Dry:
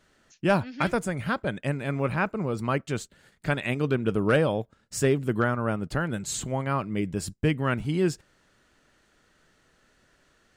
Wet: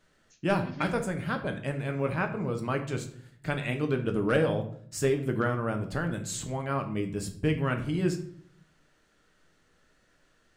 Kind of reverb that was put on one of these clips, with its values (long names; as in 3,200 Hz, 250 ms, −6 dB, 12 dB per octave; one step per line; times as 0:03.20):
rectangular room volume 75 cubic metres, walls mixed, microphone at 0.45 metres
level −4.5 dB